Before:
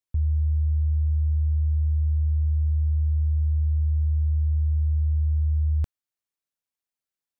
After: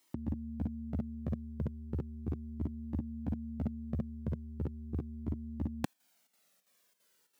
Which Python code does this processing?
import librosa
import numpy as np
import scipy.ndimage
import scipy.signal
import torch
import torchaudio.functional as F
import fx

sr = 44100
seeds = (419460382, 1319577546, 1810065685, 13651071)

y = fx.chopper(x, sr, hz=3.0, depth_pct=60, duty_pct=80)
y = fx.over_compress(y, sr, threshold_db=-28.0, ratio=-0.5)
y = scipy.signal.sosfilt(scipy.signal.butter(4, 170.0, 'highpass', fs=sr, output='sos'), y)
y = fx.peak_eq(y, sr, hz=240.0, db=4.0, octaves=1.7)
y = fx.comb_cascade(y, sr, direction='falling', hz=0.37)
y = y * 10.0 ** (17.0 / 20.0)